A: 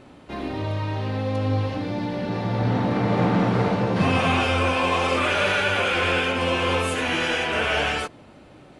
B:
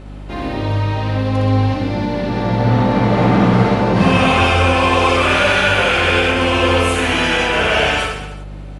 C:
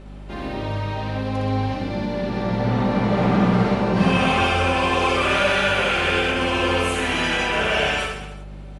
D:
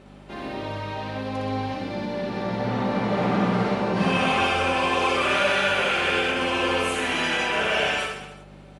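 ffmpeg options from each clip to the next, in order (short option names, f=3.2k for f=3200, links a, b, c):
-af "aeval=exprs='val(0)+0.01*(sin(2*PI*50*n/s)+sin(2*PI*2*50*n/s)/2+sin(2*PI*3*50*n/s)/3+sin(2*PI*4*50*n/s)/4+sin(2*PI*5*50*n/s)/5)':c=same,aecho=1:1:60|126|198.6|278.5|366.3:0.631|0.398|0.251|0.158|0.1,volume=5.5dB"
-af "aecho=1:1:5.1:0.33,volume=-6dB"
-af "highpass=f=210:p=1,volume=-2dB"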